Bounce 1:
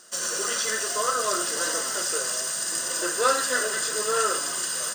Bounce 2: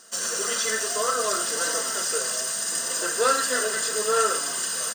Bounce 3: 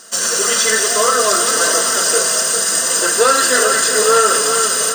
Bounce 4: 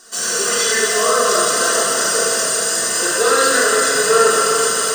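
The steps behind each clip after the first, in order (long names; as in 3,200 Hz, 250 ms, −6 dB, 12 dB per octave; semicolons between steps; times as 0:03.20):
comb filter 4.4 ms, depth 44%
on a send: echo with a time of its own for lows and highs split 1,900 Hz, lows 401 ms, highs 172 ms, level −8 dB; on the sum: boost into a limiter +11.5 dB; level −1 dB
rectangular room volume 1,100 cubic metres, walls mixed, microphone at 3.5 metres; level −8 dB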